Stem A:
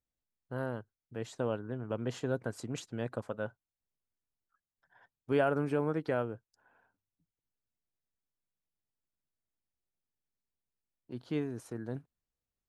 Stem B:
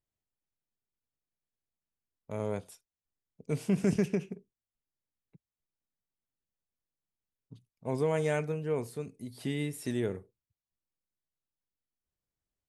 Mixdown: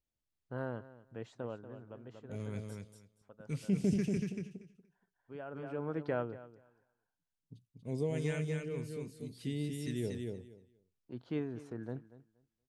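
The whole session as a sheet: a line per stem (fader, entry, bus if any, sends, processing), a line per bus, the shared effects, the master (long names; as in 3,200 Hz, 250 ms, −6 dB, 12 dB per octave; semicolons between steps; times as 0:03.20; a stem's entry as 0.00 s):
−2.5 dB, 0.00 s, muted 0:02.61–0:03.21, no send, echo send −17 dB, high-shelf EQ 6,100 Hz −9.5 dB; automatic ducking −16 dB, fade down 1.30 s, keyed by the second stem
−3.0 dB, 0.00 s, no send, echo send −4 dB, all-pass phaser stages 2, 1.9 Hz, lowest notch 630–1,400 Hz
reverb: not used
echo: repeating echo 237 ms, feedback 17%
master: high-shelf EQ 10,000 Hz −11 dB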